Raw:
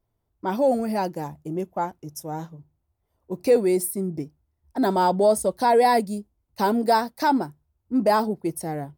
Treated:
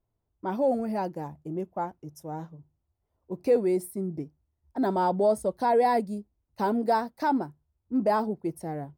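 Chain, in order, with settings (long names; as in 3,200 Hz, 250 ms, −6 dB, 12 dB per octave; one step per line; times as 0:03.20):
high-shelf EQ 2,700 Hz −10.5 dB
level −4 dB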